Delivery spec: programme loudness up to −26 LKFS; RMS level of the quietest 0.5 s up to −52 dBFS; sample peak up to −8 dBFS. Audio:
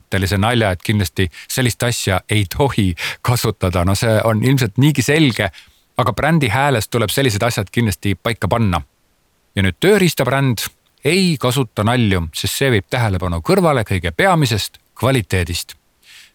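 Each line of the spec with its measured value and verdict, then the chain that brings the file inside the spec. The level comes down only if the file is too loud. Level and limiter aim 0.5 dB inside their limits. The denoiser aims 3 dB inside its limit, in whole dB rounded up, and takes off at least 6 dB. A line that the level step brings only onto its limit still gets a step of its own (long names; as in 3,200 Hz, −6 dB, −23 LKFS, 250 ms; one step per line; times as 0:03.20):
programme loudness −16.5 LKFS: out of spec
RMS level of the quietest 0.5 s −60 dBFS: in spec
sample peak −1.5 dBFS: out of spec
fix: level −10 dB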